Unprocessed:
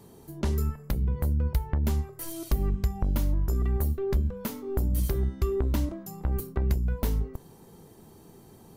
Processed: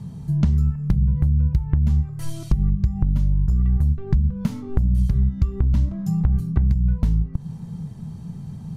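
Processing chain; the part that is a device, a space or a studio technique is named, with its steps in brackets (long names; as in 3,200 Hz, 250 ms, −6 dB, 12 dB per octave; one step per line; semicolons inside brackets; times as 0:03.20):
jukebox (low-pass filter 7,400 Hz 12 dB per octave; low shelf with overshoot 240 Hz +13 dB, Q 3; downward compressor, threshold −19 dBFS, peak gain reduction 13.5 dB)
level +3.5 dB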